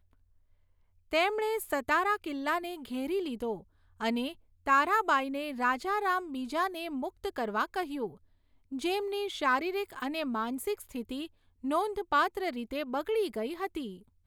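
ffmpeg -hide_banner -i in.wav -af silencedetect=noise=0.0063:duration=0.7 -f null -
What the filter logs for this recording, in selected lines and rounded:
silence_start: 0.00
silence_end: 1.11 | silence_duration: 1.11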